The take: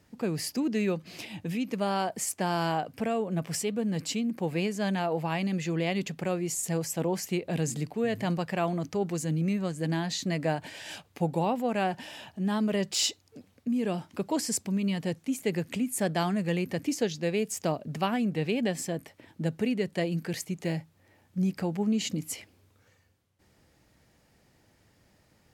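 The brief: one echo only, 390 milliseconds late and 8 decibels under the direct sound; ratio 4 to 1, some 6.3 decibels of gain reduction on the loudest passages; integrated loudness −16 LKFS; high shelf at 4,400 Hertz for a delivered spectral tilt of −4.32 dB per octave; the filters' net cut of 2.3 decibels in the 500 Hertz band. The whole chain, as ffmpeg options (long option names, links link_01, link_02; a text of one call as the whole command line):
ffmpeg -i in.wav -af "equalizer=frequency=500:width_type=o:gain=-3,highshelf=frequency=4400:gain=3.5,acompressor=threshold=-31dB:ratio=4,aecho=1:1:390:0.398,volume=18.5dB" out.wav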